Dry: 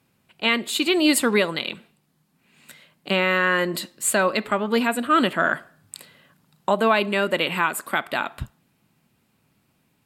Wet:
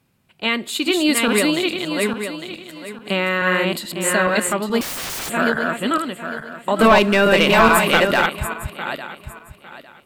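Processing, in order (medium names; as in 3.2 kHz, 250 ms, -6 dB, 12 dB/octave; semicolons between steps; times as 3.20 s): backward echo that repeats 427 ms, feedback 48%, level -2 dB; 6.79–8.26 s: waveshaping leveller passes 2; bass shelf 87 Hz +9 dB; 4.81–5.30 s: integer overflow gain 23 dB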